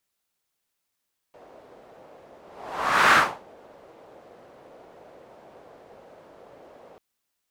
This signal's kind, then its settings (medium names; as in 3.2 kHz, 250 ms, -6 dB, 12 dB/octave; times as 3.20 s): whoosh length 5.64 s, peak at 1.80 s, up 0.77 s, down 0.32 s, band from 570 Hz, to 1.4 kHz, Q 2.1, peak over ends 33.5 dB